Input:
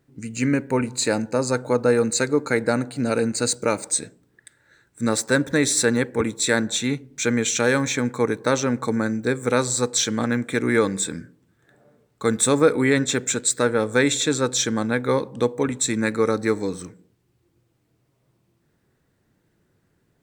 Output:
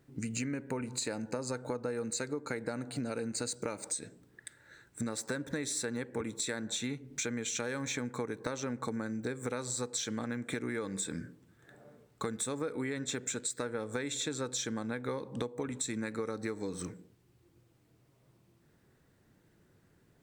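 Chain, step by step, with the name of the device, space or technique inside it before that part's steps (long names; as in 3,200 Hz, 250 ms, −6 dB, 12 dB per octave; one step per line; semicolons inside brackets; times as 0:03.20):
serial compression, peaks first (downward compressor 4 to 1, threshold −30 dBFS, peak gain reduction 15.5 dB; downward compressor 2.5 to 1, threshold −34 dBFS, peak gain reduction 6 dB)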